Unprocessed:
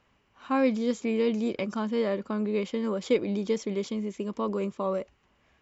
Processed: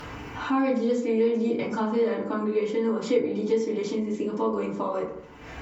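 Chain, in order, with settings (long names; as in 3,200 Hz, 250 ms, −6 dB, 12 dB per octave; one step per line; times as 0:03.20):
upward compression, threshold −33 dBFS
feedback delay network reverb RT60 0.6 s, low-frequency decay 1.1×, high-frequency decay 0.4×, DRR −10 dB
downward compressor 2 to 1, threshold −29 dBFS, peak gain reduction 13 dB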